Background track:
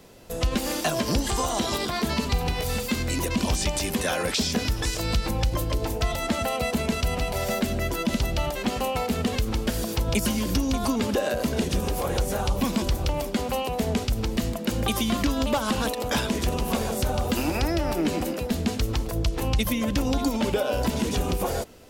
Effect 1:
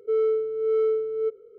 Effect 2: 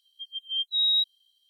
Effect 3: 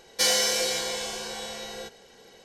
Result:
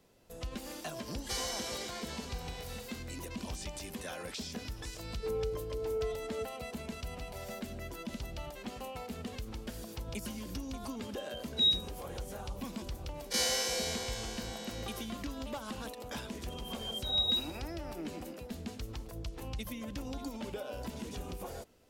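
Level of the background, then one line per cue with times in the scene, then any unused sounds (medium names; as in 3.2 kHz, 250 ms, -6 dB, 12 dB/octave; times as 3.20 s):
background track -16 dB
1.10 s: add 3 -15 dB
5.15 s: add 1 -13 dB
10.86 s: add 2 -1 dB + endings held to a fixed fall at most 210 dB/s
13.15 s: add 3 -11.5 dB + every event in the spectrogram widened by 60 ms
16.30 s: add 2 -14.5 dB + Schroeder reverb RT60 0.41 s, DRR -3.5 dB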